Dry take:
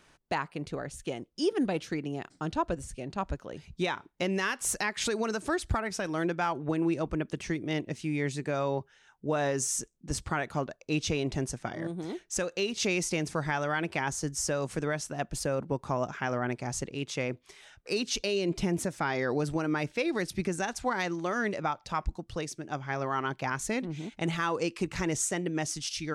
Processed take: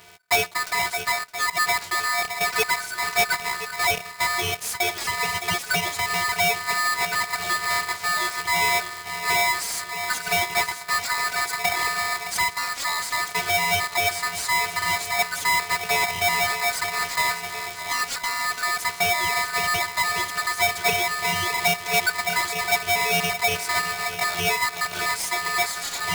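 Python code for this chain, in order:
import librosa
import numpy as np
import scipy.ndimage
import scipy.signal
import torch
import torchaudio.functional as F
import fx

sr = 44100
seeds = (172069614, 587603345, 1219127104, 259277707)

p1 = fx.block_float(x, sr, bits=3)
p2 = p1 + fx.echo_swing(p1, sr, ms=1025, ratio=1.5, feedback_pct=53, wet_db=-15, dry=0)
p3 = fx.rider(p2, sr, range_db=4, speed_s=0.5)
p4 = fx.peak_eq(p3, sr, hz=750.0, db=12.0, octaves=0.76)
p5 = fx.robotise(p4, sr, hz=265.0)
p6 = fx.fold_sine(p5, sr, drive_db=10, ceiling_db=-12.5)
p7 = p5 + (p6 * librosa.db_to_amplitude(-10.0))
y = p7 * np.sign(np.sin(2.0 * np.pi * 1500.0 * np.arange(len(p7)) / sr))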